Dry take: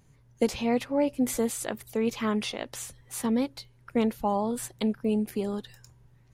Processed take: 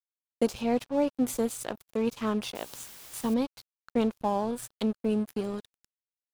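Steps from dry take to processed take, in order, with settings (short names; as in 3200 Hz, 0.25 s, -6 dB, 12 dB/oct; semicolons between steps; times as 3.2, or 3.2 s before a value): crossover distortion -40.5 dBFS; 2.55–3.34 requantised 8-bit, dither triangular; dynamic EQ 2000 Hz, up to -7 dB, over -55 dBFS, Q 3.4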